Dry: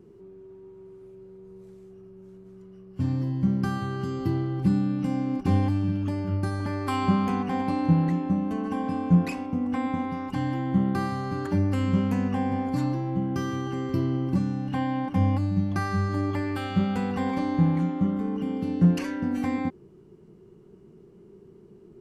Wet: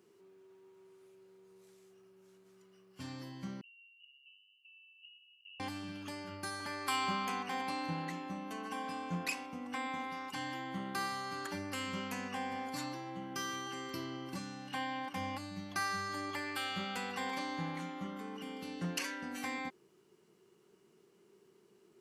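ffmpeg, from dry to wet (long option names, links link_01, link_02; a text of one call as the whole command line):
ffmpeg -i in.wav -filter_complex "[0:a]asettb=1/sr,asplit=3[link_01][link_02][link_03];[link_01]atrim=end=3.614[link_04];[link_02]atrim=start=3.61:end=5.6,asetpts=PTS-STARTPTS,afade=type=in:duration=0.004:curve=qsin,afade=type=out:start_time=1.986:duration=0.004:curve=qsin,asuperpass=centerf=2800:order=20:qfactor=7.6[link_05];[link_03]atrim=start=5.596[link_06];[link_04][link_05]acrossfade=duration=0.004:curve1=hsin:curve2=qsin[link_07];[link_07][link_06]acrossfade=duration=0.004:curve1=qsin:curve2=hsin,lowpass=frequency=3200:poles=1,aderivative,volume=11.5dB" out.wav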